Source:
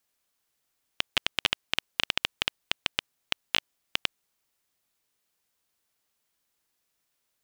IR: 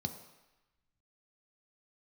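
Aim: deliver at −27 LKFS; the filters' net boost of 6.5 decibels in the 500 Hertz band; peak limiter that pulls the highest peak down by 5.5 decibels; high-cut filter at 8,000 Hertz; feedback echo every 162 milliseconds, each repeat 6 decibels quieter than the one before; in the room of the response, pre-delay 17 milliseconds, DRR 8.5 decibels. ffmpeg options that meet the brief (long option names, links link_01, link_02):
-filter_complex "[0:a]lowpass=8000,equalizer=frequency=500:width_type=o:gain=8,alimiter=limit=-8.5dB:level=0:latency=1,aecho=1:1:162|324|486|648|810|972:0.501|0.251|0.125|0.0626|0.0313|0.0157,asplit=2[link_01][link_02];[1:a]atrim=start_sample=2205,adelay=17[link_03];[link_02][link_03]afir=irnorm=-1:irlink=0,volume=-9dB[link_04];[link_01][link_04]amix=inputs=2:normalize=0,volume=7dB"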